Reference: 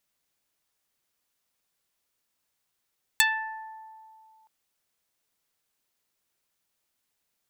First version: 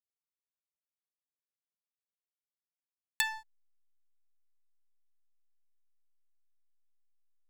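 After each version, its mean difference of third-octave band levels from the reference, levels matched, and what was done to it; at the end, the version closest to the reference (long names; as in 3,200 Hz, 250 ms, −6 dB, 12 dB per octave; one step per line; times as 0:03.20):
3.5 dB: slack as between gear wheels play −23.5 dBFS
level −7 dB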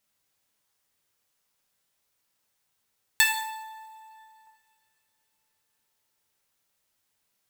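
6.5 dB: coupled-rooms reverb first 0.74 s, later 3.5 s, from −28 dB, DRR 0.5 dB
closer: first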